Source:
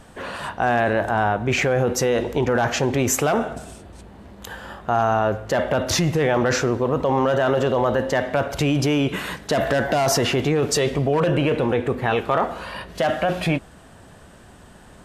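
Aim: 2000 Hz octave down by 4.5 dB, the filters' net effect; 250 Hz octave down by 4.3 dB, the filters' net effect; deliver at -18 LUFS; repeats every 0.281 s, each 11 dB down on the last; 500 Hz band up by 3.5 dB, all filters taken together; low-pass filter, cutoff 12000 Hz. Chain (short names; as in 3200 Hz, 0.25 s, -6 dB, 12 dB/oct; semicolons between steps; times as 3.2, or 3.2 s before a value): LPF 12000 Hz; bell 250 Hz -8.5 dB; bell 500 Hz +6.5 dB; bell 2000 Hz -6.5 dB; feedback echo 0.281 s, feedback 28%, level -11 dB; gain +1.5 dB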